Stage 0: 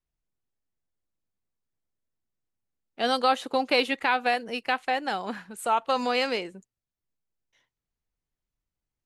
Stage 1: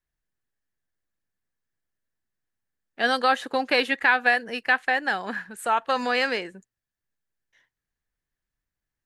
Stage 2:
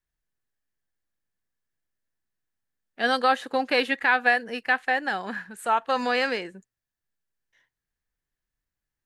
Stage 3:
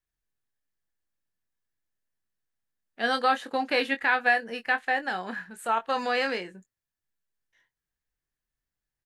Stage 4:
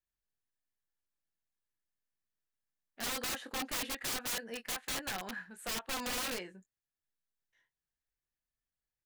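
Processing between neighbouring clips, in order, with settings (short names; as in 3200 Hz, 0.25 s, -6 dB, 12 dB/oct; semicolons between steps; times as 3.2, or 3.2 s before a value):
bell 1700 Hz +12.5 dB 0.38 oct
harmonic-percussive split harmonic +4 dB; gain -3.5 dB
doubler 22 ms -8.5 dB; gain -3 dB
wrapped overs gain 24 dB; gain -7 dB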